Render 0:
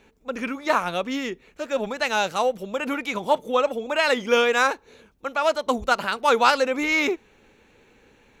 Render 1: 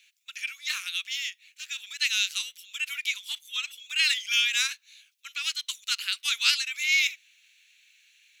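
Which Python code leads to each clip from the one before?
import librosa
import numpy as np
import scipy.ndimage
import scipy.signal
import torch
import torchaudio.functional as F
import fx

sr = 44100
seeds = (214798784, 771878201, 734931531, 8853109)

y = scipy.signal.sosfilt(scipy.signal.cheby2(4, 60, 750.0, 'highpass', fs=sr, output='sos'), x)
y = F.gain(torch.from_numpy(y), 5.5).numpy()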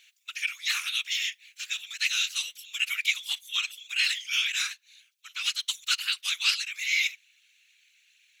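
y = fx.rider(x, sr, range_db=3, speed_s=0.5)
y = fx.whisperise(y, sr, seeds[0])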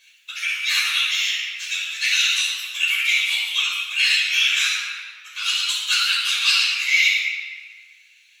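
y = fx.room_shoebox(x, sr, seeds[1], volume_m3=2800.0, walls='mixed', distance_m=5.4)
y = fx.ensemble(y, sr)
y = F.gain(torch.from_numpy(y), 4.5).numpy()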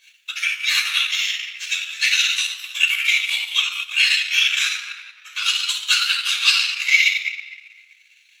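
y = fx.transient(x, sr, attack_db=6, sustain_db=-10)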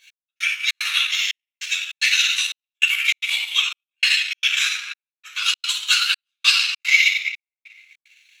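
y = fx.step_gate(x, sr, bpm=149, pattern='x...xxx.xxxx', floor_db=-60.0, edge_ms=4.5)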